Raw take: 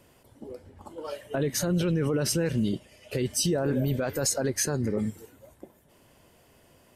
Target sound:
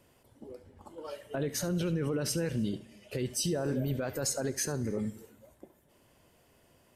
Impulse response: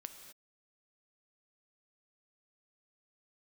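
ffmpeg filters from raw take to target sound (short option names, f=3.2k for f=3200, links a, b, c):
-filter_complex "[0:a]asplit=2[a][b];[1:a]atrim=start_sample=2205,adelay=71[c];[b][c]afir=irnorm=-1:irlink=0,volume=-11dB[d];[a][d]amix=inputs=2:normalize=0,volume=-5.5dB"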